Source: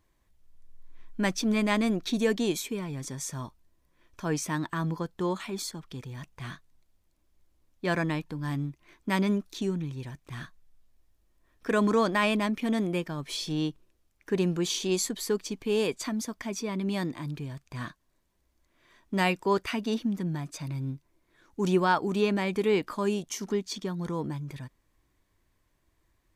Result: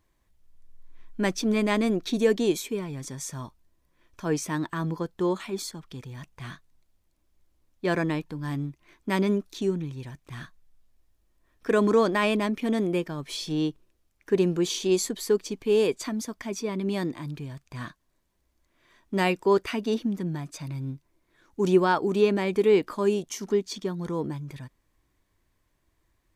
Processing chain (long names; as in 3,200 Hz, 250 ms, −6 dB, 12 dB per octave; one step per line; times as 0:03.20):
dynamic equaliser 400 Hz, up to +6 dB, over −39 dBFS, Q 1.6